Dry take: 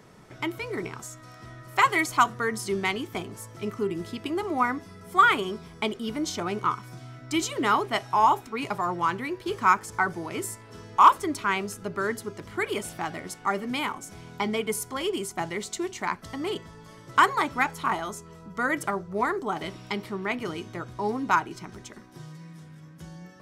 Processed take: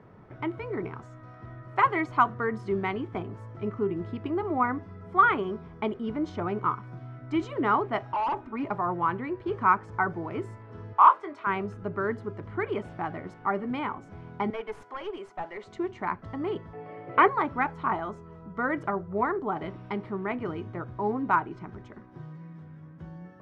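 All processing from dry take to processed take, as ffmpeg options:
-filter_complex "[0:a]asettb=1/sr,asplit=3[a][b][c];[a]atrim=end=8.124[d];[b]atrim=start=8.12:end=8.7,asetpts=PTS-STARTPTS,afade=t=in:d=0.004:c=qsin,afade=t=out:st=0.576:d=0.004:c=qsin,highshelf=f=3.9k:g=-8.5,aecho=1:1:3.3:0.62,atrim=end_sample=25578,asoftclip=type=hard:threshold=-25dB[e];[c]atrim=start=8.696[f];[d][e]acrossfade=d=0.004:c1=hsin:c2=qsin[g];[g][f]acrossfade=d=0.004:c1=qsin:c2=hsin,asettb=1/sr,asplit=3[h][i][j];[h]atrim=end=10.934[k];[i]atrim=start=10.93:end=11.47,asetpts=PTS-STARTPTS,afade=t=in:d=0.004:c=qsin,afade=t=out:st=0.536:d=0.004:c=qsin,highpass=600,highshelf=f=8.1k:g=-8.5,asplit=2[l][m];[m]adelay=21,volume=-7.5dB[n];[l][n]amix=inputs=2:normalize=0,atrim=end_sample=23814[o];[j]atrim=start=11.466[p];[k][o]acrossfade=d=0.004:c1=hsin:c2=qsin[q];[q][p]acrossfade=d=0.004:c1=qsin:c2=hsin,asettb=1/sr,asplit=3[r][s][t];[r]atrim=end=14.504[u];[s]atrim=start=14.5:end=15.67,asetpts=PTS-STARTPTS,afade=t=in:d=0.004:c=qsin,afade=t=out:st=1.166:d=0.004:c=qsin,highpass=520,aeval=exprs='clip(val(0),-1,0.0237)':c=same[v];[t]atrim=start=15.666[w];[u][v]acrossfade=d=0.004:c1=hsin:c2=qsin[x];[x][w]acrossfade=d=0.004:c1=qsin:c2=hsin,asettb=1/sr,asplit=3[y][z][aa];[y]atrim=end=16.734[ab];[z]atrim=start=16.73:end=17.28,asetpts=PTS-STARTPTS,afade=t=in:d=0.004:c=qsin,afade=t=out:st=0.546:d=0.004:c=qsin,aeval=exprs='val(0)+0.00251*sin(2*PI*730*n/s)':c=same,acontrast=78,highpass=210,equalizer=f=220:t=q:w=4:g=-7,equalizer=f=470:t=q:w=4:g=6,equalizer=f=1k:t=q:w=4:g=-8,equalizer=f=1.5k:t=q:w=4:g=-7,equalizer=f=2.3k:t=q:w=4:g=8,equalizer=f=3.7k:t=q:w=4:g=-9,lowpass=f=3.9k:w=0.5412,lowpass=f=3.9k:w=1.3066[ac];[aa]atrim=start=17.276[ad];[ab][ac]acrossfade=d=0.004:c1=hsin:c2=qsin[ae];[ae][ad]acrossfade=d=0.004:c1=qsin:c2=hsin,lowpass=1.5k,equalizer=f=100:t=o:w=0.31:g=8"

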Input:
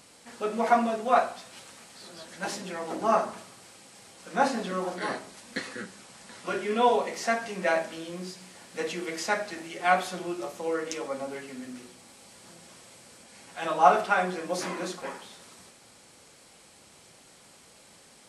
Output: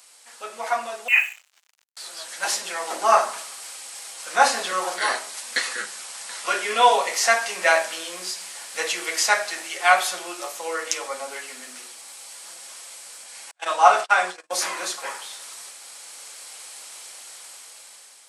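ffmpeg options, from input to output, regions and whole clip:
-filter_complex "[0:a]asettb=1/sr,asplit=3[a][b][c];[a]atrim=end=1.084[d];[b]atrim=start=1.08:end=1.97,asetpts=PTS-STARTPTS,afade=t=in:d=0.004:c=qsin,afade=t=out:st=0.886:d=0.004:c=qsin,lowpass=f=2.7k:t=q:w=0.5098,lowpass=f=2.7k:t=q:w=0.6013,lowpass=f=2.7k:t=q:w=0.9,lowpass=f=2.7k:t=q:w=2.563,afreqshift=-3200,aeval=exprs='sgn(val(0))*max(abs(val(0))-0.00531,0)':c=same[e];[c]atrim=start=1.966[f];[d][e]acrossfade=d=0.004:c1=hsin:c2=qsin[g];[g][f]acrossfade=d=0.004:c1=qsin:c2=hsin,asettb=1/sr,asplit=3[h][i][j];[h]atrim=end=13.514[k];[i]atrim=start=13.51:end=14.52,asetpts=PTS-STARTPTS,afade=t=in:d=0.004:c=qsin,afade=t=out:st=1.006:d=0.004:c=qsin,agate=range=-41dB:threshold=-33dB:ratio=16:release=100:detection=peak,lowpass=f=9.9k:w=0.5412,lowpass=f=9.9k:w=1.3066[l];[j]atrim=start=14.516[m];[k][l]acrossfade=d=0.004:c1=hsin:c2=qsin[n];[n][m]acrossfade=d=0.004:c1=qsin:c2=hsin,highpass=790,highshelf=f=5.4k:g=8.5,dynaudnorm=f=600:g=5:m=11.5dB"

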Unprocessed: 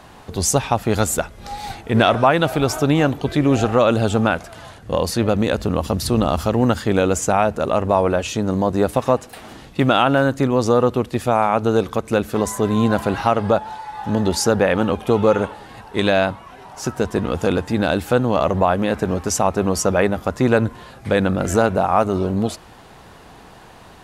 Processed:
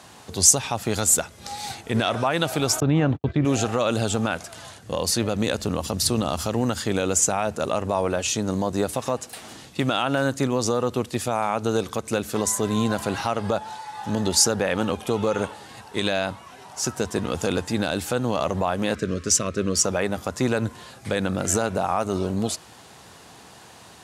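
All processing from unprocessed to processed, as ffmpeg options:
-filter_complex "[0:a]asettb=1/sr,asplit=3[a][b][c];[a]atrim=end=2.804[d];[b]atrim=start=2.8:end=3.45,asetpts=PTS-STARTPTS,afade=t=in:d=0.004:c=qsin,afade=t=out:st=0.646:d=0.004:c=qsin,agate=range=-58dB:threshold=-28dB:ratio=16:release=100:detection=peak,lowpass=2.4k,lowshelf=f=220:g=11[e];[c]atrim=start=3.446[f];[d][e]acrossfade=d=0.004:c1=hsin:c2=qsin[g];[g][f]acrossfade=d=0.004:c1=qsin:c2=hsin,asettb=1/sr,asplit=3[h][i][j];[h]atrim=end=18.954[k];[i]atrim=start=18.95:end=19.84,asetpts=PTS-STARTPTS,afade=t=in:d=0.004:c=qsin,afade=t=out:st=0.886:d=0.004:c=qsin,asuperstop=centerf=820:order=4:qfactor=1.3,adynamicsmooth=sensitivity=2:basefreq=6.8k[l];[j]atrim=start=19.836[m];[k][l]acrossfade=d=0.004:c1=hsin:c2=qsin[n];[n][m]acrossfade=d=0.004:c1=qsin:c2=hsin,highpass=f=73:w=0.5412,highpass=f=73:w=1.3066,alimiter=limit=-7dB:level=0:latency=1:release=98,equalizer=f=7.5k:t=o:w=2.1:g=11.5,volume=-5dB"

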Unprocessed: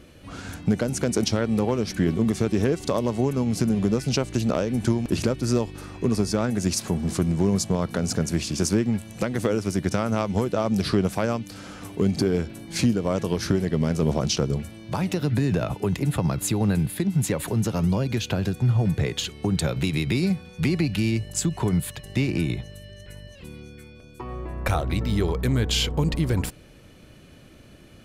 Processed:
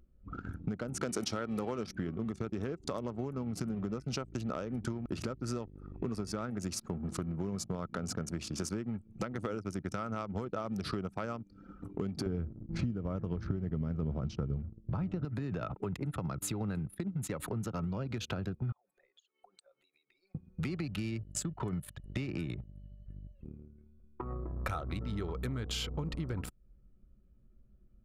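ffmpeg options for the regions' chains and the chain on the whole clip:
-filter_complex "[0:a]asettb=1/sr,asplit=3[a][b][c];[a]atrim=end=1.014[d];[b]atrim=start=1.01:end=1.87,asetpts=PTS-STARTPTS,afade=t=in:d=0.004:c=qsin,afade=t=out:st=0.856:d=0.004:c=qsin,lowshelf=f=120:g=-11,acontrast=54[e];[c]atrim=start=1.866[f];[d][e]acrossfade=d=0.004:c1=hsin:c2=qsin[g];[g][f]acrossfade=d=0.004:c1=qsin:c2=hsin,asettb=1/sr,asplit=3[h][i][j];[h]atrim=end=12.264[k];[i]atrim=start=12.26:end=15.25,asetpts=PTS-STARTPTS,afade=t=in:d=0.004:c=qsin,afade=t=out:st=2.986:d=0.004:c=qsin,aemphasis=mode=reproduction:type=riaa,agate=range=-33dB:threshold=-28dB:ratio=3:release=100:detection=peak[l];[j]atrim=start=15.246[m];[k][l]acrossfade=d=0.004:c1=hsin:c2=qsin[n];[n][m]acrossfade=d=0.004:c1=qsin:c2=hsin,asettb=1/sr,asplit=3[o][p][q];[o]atrim=end=18.724[r];[p]atrim=start=18.72:end=20.35,asetpts=PTS-STARTPTS,afade=t=in:d=0.004:c=qsin,afade=t=out:st=1.626:d=0.004:c=qsin,highpass=f=530:w=0.5412,highpass=f=530:w=1.3066,highshelf=f=5k:g=11.5,acompressor=threshold=-40dB:ratio=12:attack=3.2:release=140:knee=1:detection=peak[s];[q]atrim=start=20.346[t];[r][s]acrossfade=d=0.004:c1=hsin:c2=qsin[u];[u][t]acrossfade=d=0.004:c1=qsin:c2=hsin,anlmdn=25.1,equalizer=f=1.3k:w=6.2:g=11,acompressor=threshold=-36dB:ratio=4"

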